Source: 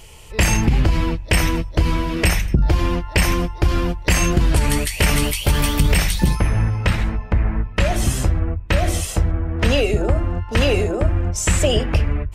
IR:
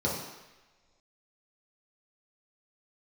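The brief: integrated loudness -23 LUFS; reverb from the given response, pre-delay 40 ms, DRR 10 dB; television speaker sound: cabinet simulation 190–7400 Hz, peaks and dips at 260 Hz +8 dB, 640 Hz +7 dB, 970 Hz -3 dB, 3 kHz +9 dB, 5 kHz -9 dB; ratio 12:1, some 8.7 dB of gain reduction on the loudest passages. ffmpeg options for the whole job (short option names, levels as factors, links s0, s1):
-filter_complex "[0:a]acompressor=threshold=0.1:ratio=12,asplit=2[s0][s1];[1:a]atrim=start_sample=2205,adelay=40[s2];[s1][s2]afir=irnorm=-1:irlink=0,volume=0.106[s3];[s0][s3]amix=inputs=2:normalize=0,highpass=f=190:w=0.5412,highpass=f=190:w=1.3066,equalizer=f=260:t=q:w=4:g=8,equalizer=f=640:t=q:w=4:g=7,equalizer=f=970:t=q:w=4:g=-3,equalizer=f=3000:t=q:w=4:g=9,equalizer=f=5000:t=q:w=4:g=-9,lowpass=f=7400:w=0.5412,lowpass=f=7400:w=1.3066,volume=1.41"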